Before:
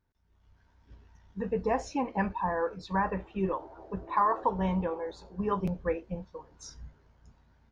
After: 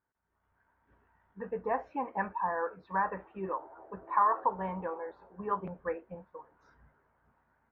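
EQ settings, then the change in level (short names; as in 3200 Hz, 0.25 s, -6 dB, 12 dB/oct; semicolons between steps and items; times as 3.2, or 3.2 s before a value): LPF 1600 Hz 24 dB/oct; tilt +4.5 dB/oct; 0.0 dB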